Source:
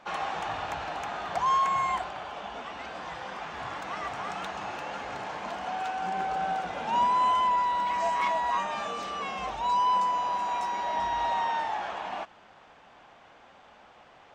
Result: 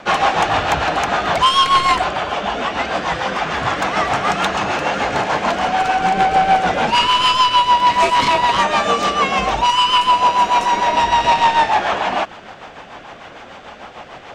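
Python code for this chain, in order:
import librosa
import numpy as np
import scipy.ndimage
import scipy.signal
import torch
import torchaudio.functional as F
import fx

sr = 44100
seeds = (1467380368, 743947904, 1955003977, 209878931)

y = fx.fold_sine(x, sr, drive_db=10, ceiling_db=-15.0)
y = fx.rotary(y, sr, hz=6.7)
y = y * 10.0 ** (7.5 / 20.0)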